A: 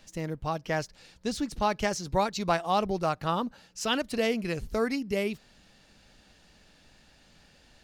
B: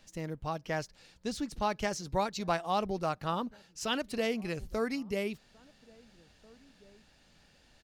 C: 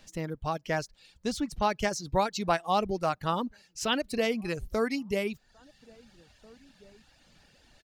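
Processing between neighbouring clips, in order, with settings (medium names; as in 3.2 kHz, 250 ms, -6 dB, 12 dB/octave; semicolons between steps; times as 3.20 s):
echo from a far wall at 290 m, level -25 dB; trim -4.5 dB
reverb removal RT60 0.73 s; trim +4.5 dB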